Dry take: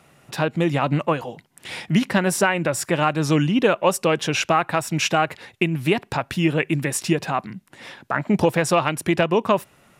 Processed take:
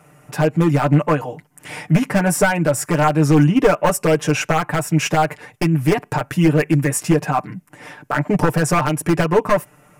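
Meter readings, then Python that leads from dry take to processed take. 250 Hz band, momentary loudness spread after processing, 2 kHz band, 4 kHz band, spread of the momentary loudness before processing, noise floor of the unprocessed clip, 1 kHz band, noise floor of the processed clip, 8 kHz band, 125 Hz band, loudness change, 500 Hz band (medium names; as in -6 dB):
+4.5 dB, 8 LU, +1.5 dB, -2.5 dB, 9 LU, -57 dBFS, +2.5 dB, -53 dBFS, +3.0 dB, +7.0 dB, +3.5 dB, +3.0 dB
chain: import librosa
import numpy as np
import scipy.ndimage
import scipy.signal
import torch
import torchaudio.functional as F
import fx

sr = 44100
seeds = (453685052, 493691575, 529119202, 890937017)

y = np.minimum(x, 2.0 * 10.0 ** (-13.0 / 20.0) - x)
y = fx.peak_eq(y, sr, hz=3800.0, db=-13.5, octaves=0.88)
y = y + 0.8 * np.pad(y, (int(6.7 * sr / 1000.0), 0))[:len(y)]
y = y * 10.0 ** (3.0 / 20.0)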